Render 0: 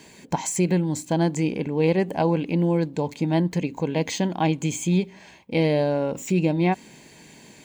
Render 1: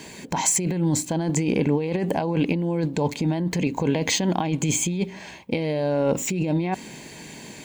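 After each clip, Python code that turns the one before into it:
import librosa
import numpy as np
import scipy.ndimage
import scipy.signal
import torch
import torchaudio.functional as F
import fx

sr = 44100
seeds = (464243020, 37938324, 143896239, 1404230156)

y = fx.over_compress(x, sr, threshold_db=-26.0, ratio=-1.0)
y = y * librosa.db_to_amplitude(3.5)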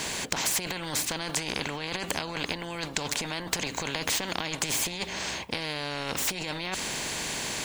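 y = fx.high_shelf(x, sr, hz=11000.0, db=-9.0)
y = fx.spectral_comp(y, sr, ratio=4.0)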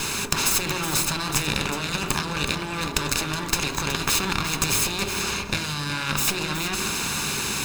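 y = fx.lower_of_two(x, sr, delay_ms=0.78)
y = y + 10.0 ** (-10.5 / 20.0) * np.pad(y, (int(370 * sr / 1000.0), 0))[:len(y)]
y = fx.rev_fdn(y, sr, rt60_s=1.1, lf_ratio=1.5, hf_ratio=0.25, size_ms=15.0, drr_db=6.5)
y = y * librosa.db_to_amplitude(7.0)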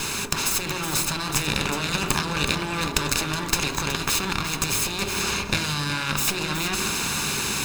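y = fx.rider(x, sr, range_db=10, speed_s=0.5)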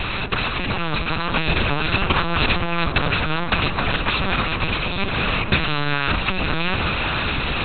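y = fx.lpc_vocoder(x, sr, seeds[0], excitation='pitch_kept', order=8)
y = y * librosa.db_to_amplitude(6.5)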